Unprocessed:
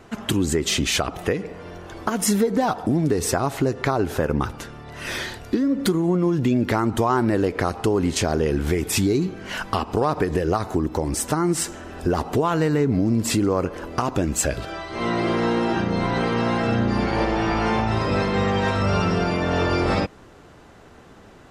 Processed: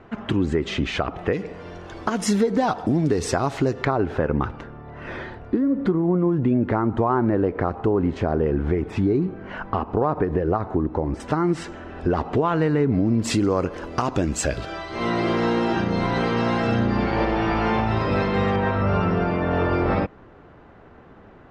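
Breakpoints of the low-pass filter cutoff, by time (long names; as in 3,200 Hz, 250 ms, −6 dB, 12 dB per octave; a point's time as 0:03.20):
2,300 Hz
from 0:01.33 6,000 Hz
from 0:03.85 2,300 Hz
from 0:04.61 1,400 Hz
from 0:11.20 2,800 Hz
from 0:13.22 6,600 Hz
from 0:16.87 3,700 Hz
from 0:18.56 2,000 Hz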